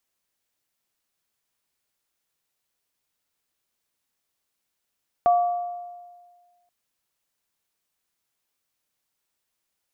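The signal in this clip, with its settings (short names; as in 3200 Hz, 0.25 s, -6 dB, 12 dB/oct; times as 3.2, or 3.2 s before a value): sine partials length 1.43 s, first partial 706 Hz, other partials 1150 Hz, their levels -13 dB, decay 1.62 s, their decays 1.05 s, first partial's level -13.5 dB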